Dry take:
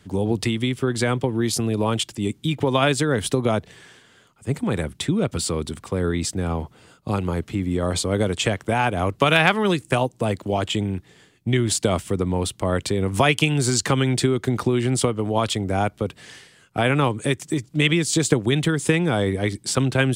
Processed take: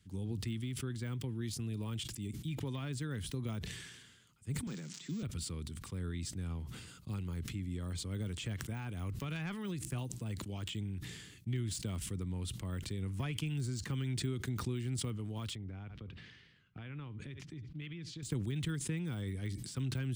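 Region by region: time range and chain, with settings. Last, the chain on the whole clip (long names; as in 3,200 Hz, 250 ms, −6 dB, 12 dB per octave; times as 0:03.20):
0:04.67–0:05.23: spike at every zero crossing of −18 dBFS + Chebyshev band-pass filter 150–7,400 Hz, order 5
0:15.55–0:18.23: downward compressor, threshold −23 dBFS + high-frequency loss of the air 290 metres + single-tap delay 71 ms −20 dB
whole clip: de-essing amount 95%; guitar amp tone stack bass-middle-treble 6-0-2; level that may fall only so fast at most 43 dB per second; level +1 dB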